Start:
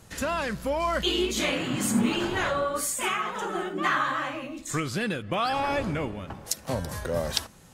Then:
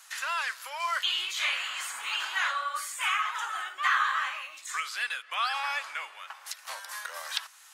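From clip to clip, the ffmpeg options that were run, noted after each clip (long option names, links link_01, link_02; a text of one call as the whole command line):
ffmpeg -i in.wav -filter_complex "[0:a]asplit=2[link_01][link_02];[link_02]acompressor=threshold=-34dB:ratio=6,volume=-2.5dB[link_03];[link_01][link_03]amix=inputs=2:normalize=0,highpass=frequency=1100:width=0.5412,highpass=frequency=1100:width=1.3066,acrossover=split=3800[link_04][link_05];[link_05]acompressor=threshold=-38dB:ratio=4:attack=1:release=60[link_06];[link_04][link_06]amix=inputs=2:normalize=0" out.wav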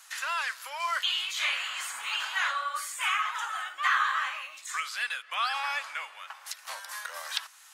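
ffmpeg -i in.wav -af "equalizer=frequency=370:width_type=o:width=0.23:gain=-13.5" out.wav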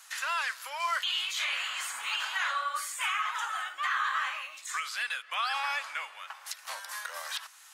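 ffmpeg -i in.wav -af "alimiter=limit=-21dB:level=0:latency=1:release=70" out.wav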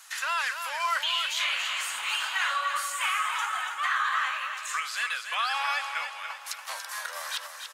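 ffmpeg -i in.wav -af "aecho=1:1:286|572|858|1144|1430:0.422|0.19|0.0854|0.0384|0.0173,volume=2.5dB" out.wav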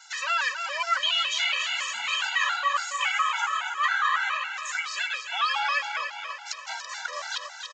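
ffmpeg -i in.wav -af "aresample=16000,aresample=44100,afftfilt=real='re*gt(sin(2*PI*3.6*pts/sr)*(1-2*mod(floor(b*sr/1024/330),2)),0)':imag='im*gt(sin(2*PI*3.6*pts/sr)*(1-2*mod(floor(b*sr/1024/330),2)),0)':win_size=1024:overlap=0.75,volume=5.5dB" out.wav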